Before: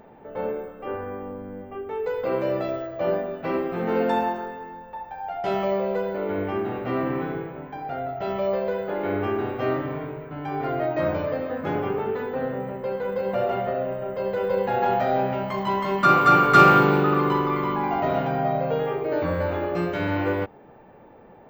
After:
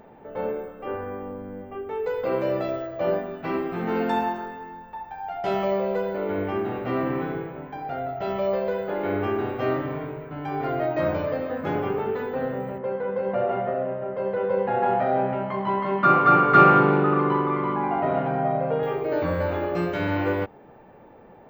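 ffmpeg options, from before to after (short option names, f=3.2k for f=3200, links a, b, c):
-filter_complex "[0:a]asettb=1/sr,asplit=3[a][b][c];[a]atrim=end=3.194[d];[b]atrim=start=3.19:end=5.44,asetpts=PTS-STARTPTS,afade=t=in:d=0.004:c=qsin,afade=t=out:st=2.246:d=0.004:c=qsin,equalizer=f=540:w=5.7:g=-11.5[e];[c]atrim=start=5.436[f];[d][e]acrossfade=d=0.004:c1=hsin:c2=qsin[g];[g][f]acrossfade=d=0.004:c1=qsin:c2=hsin,asettb=1/sr,asplit=3[h][i][j];[h]atrim=end=12.784[k];[i]atrim=start=12.78:end=18.83,asetpts=PTS-STARTPTS,afade=t=in:d=0.004:c=qsin,afade=t=out:st=6.046:d=0.004:c=qsin,highpass=100,lowpass=2.1k[l];[j]atrim=start=18.826[m];[k][l]acrossfade=d=0.004:c1=hsin:c2=qsin[n];[n][m]acrossfade=d=0.004:c1=qsin:c2=hsin"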